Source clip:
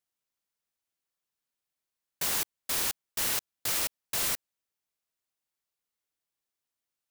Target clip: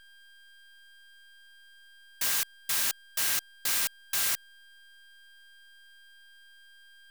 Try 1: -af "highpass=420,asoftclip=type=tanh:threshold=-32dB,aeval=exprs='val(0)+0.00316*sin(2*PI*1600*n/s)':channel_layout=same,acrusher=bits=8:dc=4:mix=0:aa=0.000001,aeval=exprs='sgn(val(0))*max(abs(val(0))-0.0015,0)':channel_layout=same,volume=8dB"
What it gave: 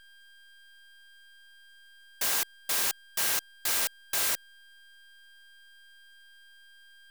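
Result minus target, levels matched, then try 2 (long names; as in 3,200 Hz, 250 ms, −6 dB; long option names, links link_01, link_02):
500 Hz band +7.0 dB
-af "highpass=1200,asoftclip=type=tanh:threshold=-32dB,aeval=exprs='val(0)+0.00316*sin(2*PI*1600*n/s)':channel_layout=same,acrusher=bits=8:dc=4:mix=0:aa=0.000001,aeval=exprs='sgn(val(0))*max(abs(val(0))-0.0015,0)':channel_layout=same,volume=8dB"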